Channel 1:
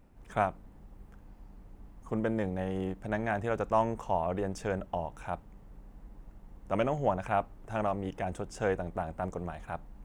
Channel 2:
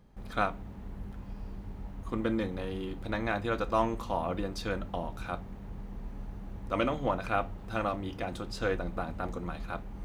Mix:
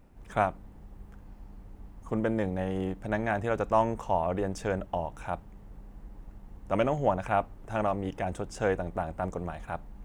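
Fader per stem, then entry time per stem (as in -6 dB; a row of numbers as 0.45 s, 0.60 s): +2.5 dB, -17.5 dB; 0.00 s, 0.00 s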